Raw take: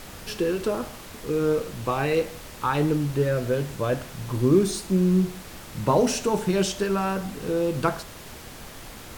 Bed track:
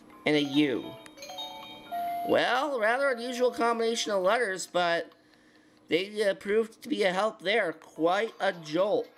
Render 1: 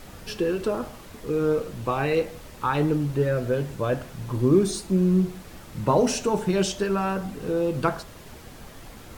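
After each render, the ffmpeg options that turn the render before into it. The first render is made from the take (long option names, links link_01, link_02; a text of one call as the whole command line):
ffmpeg -i in.wav -af "afftdn=noise_reduction=6:noise_floor=-42" out.wav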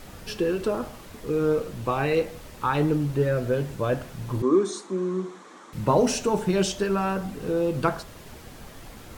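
ffmpeg -i in.wav -filter_complex "[0:a]asettb=1/sr,asplit=3[link_01][link_02][link_03];[link_01]atrim=end=4.424[link_04];[link_02]atrim=start=4.42:end=5.73,asetpts=PTS-STARTPTS,afade=type=in:duration=0.004:curve=qsin,afade=type=out:start_time=1.306:duration=0.004:curve=qsin,highpass=frequency=260:width=0.5412,highpass=frequency=260:width=1.3066,equalizer=frequency=640:width_type=q:width=4:gain=-6,equalizer=frequency=1100:width_type=q:width=4:gain=9,equalizer=frequency=2700:width_type=q:width=4:gain=-9,equalizer=frequency=4800:width_type=q:width=4:gain=-9,lowpass=frequency=7600:width=0.5412,lowpass=frequency=7600:width=1.3066[link_05];[link_03]atrim=start=5.726[link_06];[link_04][link_05]acrossfade=duration=0.004:curve1=hsin:curve2=qsin[link_07];[link_07][link_06]acrossfade=duration=0.004:curve1=qsin:curve2=hsin" out.wav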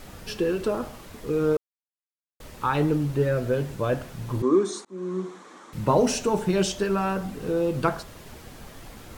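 ffmpeg -i in.wav -filter_complex "[0:a]asplit=4[link_01][link_02][link_03][link_04];[link_01]atrim=end=1.57,asetpts=PTS-STARTPTS,afade=type=out:start_time=1.566:duration=0.004:curve=hsin[link_05];[link_02]atrim=start=1.57:end=2.4,asetpts=PTS-STARTPTS,volume=0[link_06];[link_03]atrim=start=2.4:end=4.85,asetpts=PTS-STARTPTS,afade=type=in:duration=0.004:curve=hsin,afade=type=out:start_time=2.446:duration=0.004:curve=hsin[link_07];[link_04]atrim=start=4.85,asetpts=PTS-STARTPTS,afade=type=in:duration=0.48:curve=qsin[link_08];[link_05][link_06][link_07][link_08]concat=n=4:v=0:a=1" out.wav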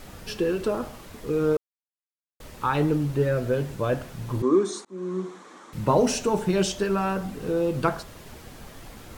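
ffmpeg -i in.wav -af anull out.wav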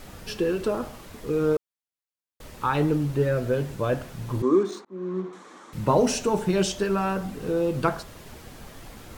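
ffmpeg -i in.wav -filter_complex "[0:a]asettb=1/sr,asplit=3[link_01][link_02][link_03];[link_01]atrim=end=4.634[link_04];[link_02]atrim=start=4.63:end=5.33,asetpts=PTS-STARTPTS,afade=type=in:duration=0.004:curve=qsin,afade=type=out:start_time=0.696:duration=0.004:curve=qsin,adynamicsmooth=sensitivity=7:basefreq=2300[link_05];[link_03]atrim=start=5.326[link_06];[link_04][link_05]acrossfade=duration=0.004:curve1=hsin:curve2=qsin[link_07];[link_07][link_06]acrossfade=duration=0.004:curve1=qsin:curve2=hsin" out.wav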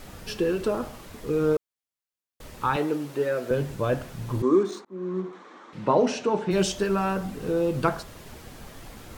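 ffmpeg -i in.wav -filter_complex "[0:a]asettb=1/sr,asplit=3[link_01][link_02][link_03];[link_01]atrim=end=2.764[link_04];[link_02]atrim=start=2.76:end=3.51,asetpts=PTS-STARTPTS,afade=type=in:duration=0.004:curve=qsin,afade=type=out:start_time=0.746:duration=0.004:curve=qsin,highpass=320[link_05];[link_03]atrim=start=3.506[link_06];[link_04][link_05]acrossfade=duration=0.004:curve1=hsin:curve2=qsin[link_07];[link_07][link_06]acrossfade=duration=0.004:curve1=qsin:curve2=hsin,asplit=3[link_08][link_09][link_10];[link_08]afade=type=out:start_time=5.32:duration=0.02[link_11];[link_09]highpass=200,lowpass=3900,afade=type=in:start_time=5.32:duration=0.02,afade=type=out:start_time=6.5:duration=0.02[link_12];[link_10]afade=type=in:start_time=6.5:duration=0.02[link_13];[link_11][link_12][link_13]amix=inputs=3:normalize=0" out.wav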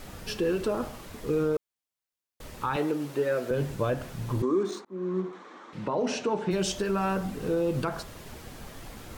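ffmpeg -i in.wav -af "alimiter=limit=-18.5dB:level=0:latency=1:release=108" out.wav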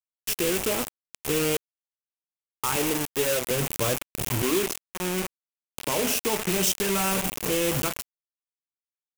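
ffmpeg -i in.wav -af "acrusher=bits=4:mix=0:aa=0.000001,aexciter=amount=2:drive=3.3:freq=2300" out.wav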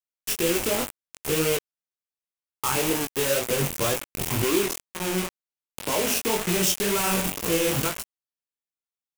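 ffmpeg -i in.wav -filter_complex "[0:a]flanger=delay=17.5:depth=5.4:speed=2,asplit=2[link_01][link_02];[link_02]acrusher=bits=4:mix=0:aa=0.5,volume=-4dB[link_03];[link_01][link_03]amix=inputs=2:normalize=0" out.wav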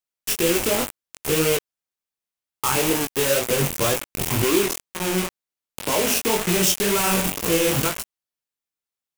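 ffmpeg -i in.wav -af "volume=3.5dB" out.wav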